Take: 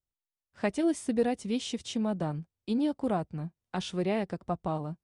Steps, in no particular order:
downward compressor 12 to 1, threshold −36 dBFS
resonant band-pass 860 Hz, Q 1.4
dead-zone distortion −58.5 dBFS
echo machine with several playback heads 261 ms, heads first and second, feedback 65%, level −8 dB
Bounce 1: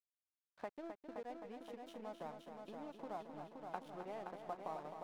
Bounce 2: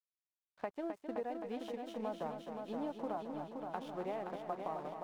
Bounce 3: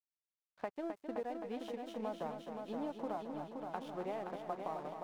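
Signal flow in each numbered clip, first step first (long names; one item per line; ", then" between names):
downward compressor, then resonant band-pass, then dead-zone distortion, then echo machine with several playback heads
resonant band-pass, then dead-zone distortion, then downward compressor, then echo machine with several playback heads
resonant band-pass, then downward compressor, then dead-zone distortion, then echo machine with several playback heads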